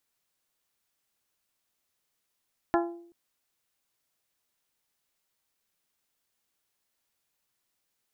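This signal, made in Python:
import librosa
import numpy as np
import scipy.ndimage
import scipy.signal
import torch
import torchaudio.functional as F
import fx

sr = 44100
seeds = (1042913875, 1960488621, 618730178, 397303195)

y = fx.strike_glass(sr, length_s=0.38, level_db=-21.5, body='bell', hz=342.0, decay_s=0.65, tilt_db=2, modes=6)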